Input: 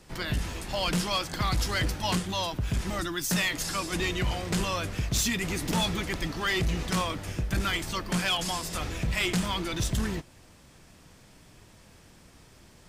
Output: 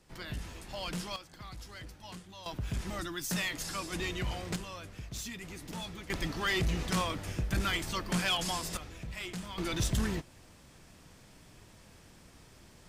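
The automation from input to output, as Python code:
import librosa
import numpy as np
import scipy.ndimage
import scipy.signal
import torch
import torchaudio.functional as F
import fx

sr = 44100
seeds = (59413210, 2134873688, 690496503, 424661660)

y = fx.gain(x, sr, db=fx.steps((0.0, -10.0), (1.16, -19.0), (2.46, -6.5), (4.56, -14.0), (6.1, -3.0), (8.77, -13.0), (9.58, -2.0)))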